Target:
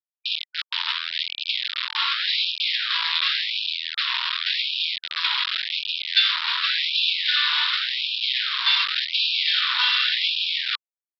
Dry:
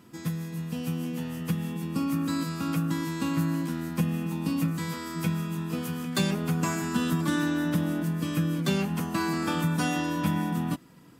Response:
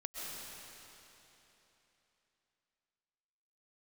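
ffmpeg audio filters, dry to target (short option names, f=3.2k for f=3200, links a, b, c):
-af "acontrast=36,aresample=11025,acrusher=bits=3:mix=0:aa=0.000001,aresample=44100,lowpass=f=3.7k:t=q:w=3.7,afftfilt=real='re*gte(b*sr/1024,860*pow(2400/860,0.5+0.5*sin(2*PI*0.89*pts/sr)))':imag='im*gte(b*sr/1024,860*pow(2400/860,0.5+0.5*sin(2*PI*0.89*pts/sr)))':win_size=1024:overlap=0.75"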